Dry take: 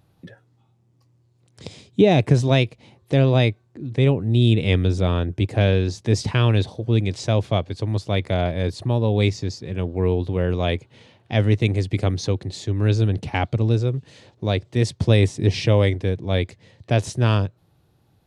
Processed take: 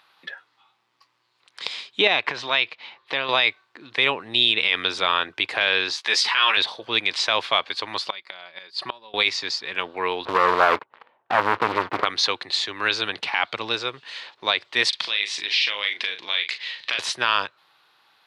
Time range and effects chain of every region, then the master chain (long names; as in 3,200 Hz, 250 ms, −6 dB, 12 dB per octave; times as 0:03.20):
0:02.07–0:03.29: low-pass filter 4,800 Hz + downward compressor 3 to 1, threshold −21 dBFS
0:05.96–0:06.57: high-pass filter 820 Hz 6 dB per octave + double-tracking delay 14 ms −4 dB
0:08.06–0:09.14: parametric band 4,700 Hz +12.5 dB 0.2 octaves + comb filter 5.3 ms, depth 50% + gate with flip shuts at −14 dBFS, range −24 dB
0:10.25–0:12.05: Chebyshev low-pass filter 650 Hz + leveller curve on the samples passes 3
0:14.89–0:16.99: meter weighting curve D + downward compressor 8 to 1, threshold −32 dBFS + double-tracking delay 39 ms −8 dB
whole clip: high-pass filter 570 Hz 12 dB per octave; flat-topped bell 2,100 Hz +15 dB 2.7 octaves; brickwall limiter −6.5 dBFS